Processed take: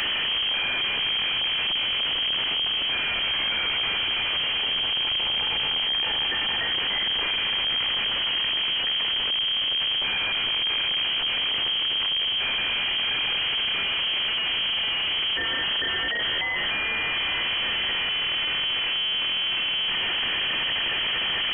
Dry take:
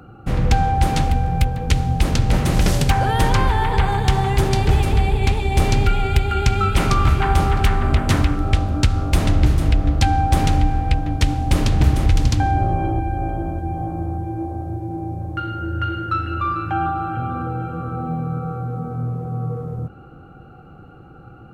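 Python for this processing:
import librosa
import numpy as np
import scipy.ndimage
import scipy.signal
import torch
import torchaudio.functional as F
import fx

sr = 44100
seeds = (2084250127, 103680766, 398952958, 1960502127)

y = np.sign(x) * np.sqrt(np.mean(np.square(x)))
y = fx.freq_invert(y, sr, carrier_hz=3200)
y = y * librosa.db_to_amplitude(-8.0)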